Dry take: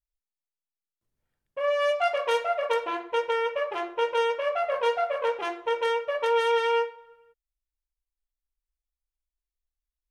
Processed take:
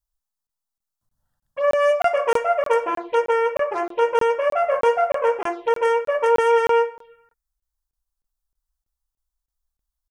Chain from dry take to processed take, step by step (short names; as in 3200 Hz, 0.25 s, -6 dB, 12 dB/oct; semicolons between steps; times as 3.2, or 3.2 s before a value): envelope phaser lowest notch 400 Hz, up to 3900 Hz, full sweep at -26 dBFS; crackling interface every 0.31 s, samples 1024, zero, from 0.47; gain +7.5 dB